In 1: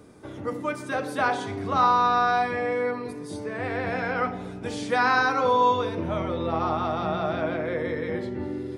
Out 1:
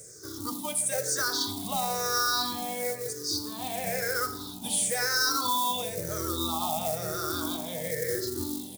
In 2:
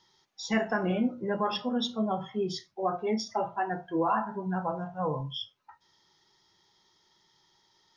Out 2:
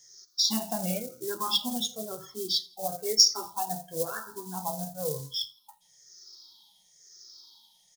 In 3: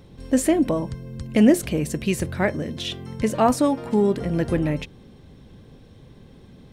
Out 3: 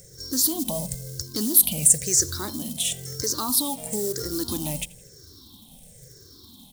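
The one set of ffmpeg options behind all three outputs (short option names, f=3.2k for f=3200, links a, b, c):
-filter_complex "[0:a]afftfilt=real='re*pow(10,21/40*sin(2*PI*(0.52*log(max(b,1)*sr/1024/100)/log(2)-(-1)*(pts-256)/sr)))':imag='im*pow(10,21/40*sin(2*PI*(0.52*log(max(b,1)*sr/1024/100)/log(2)-(-1)*(pts-256)/sr)))':win_size=1024:overlap=0.75,alimiter=limit=-12.5dB:level=0:latency=1:release=77,acrusher=bits=7:mode=log:mix=0:aa=0.000001,aexciter=amount=7.8:drive=8.4:freq=3.8k,asplit=2[a][b];[b]aecho=0:1:83|166|249:0.0708|0.0269|0.0102[c];[a][c]amix=inputs=2:normalize=0,volume=-9.5dB"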